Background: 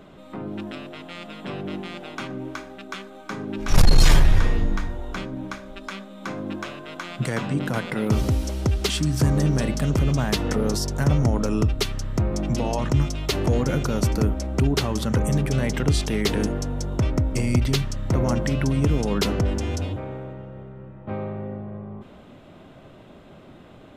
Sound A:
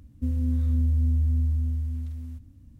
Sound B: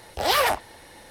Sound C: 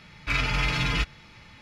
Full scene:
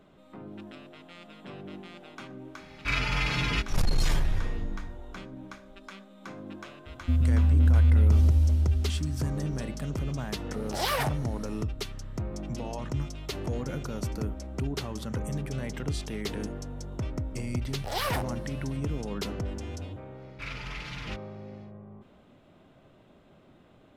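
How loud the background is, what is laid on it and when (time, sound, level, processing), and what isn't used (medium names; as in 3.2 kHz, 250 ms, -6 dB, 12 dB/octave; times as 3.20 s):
background -11 dB
2.58 s: add C -2.5 dB
6.86 s: add A -2 dB + bass shelf 110 Hz +8 dB
10.54 s: add B -8 dB
17.67 s: add B -10 dB + short-mantissa float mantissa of 4-bit
20.12 s: add C -13 dB, fades 0.10 s + loudspeaker Doppler distortion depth 0.25 ms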